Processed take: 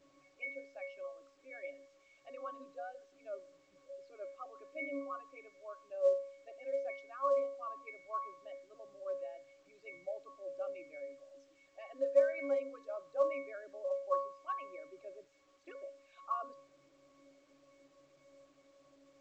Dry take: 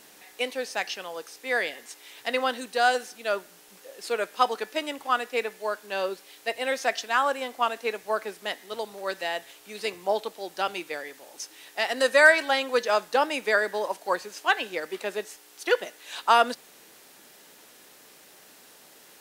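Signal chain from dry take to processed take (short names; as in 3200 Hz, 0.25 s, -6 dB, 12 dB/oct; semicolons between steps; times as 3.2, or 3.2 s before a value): formant sharpening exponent 2; in parallel at -1.5 dB: limiter -16 dBFS, peak gain reduction 9.5 dB; on the sum: octave resonator C#, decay 0.49 s; gain +2 dB; A-law 128 kbps 16000 Hz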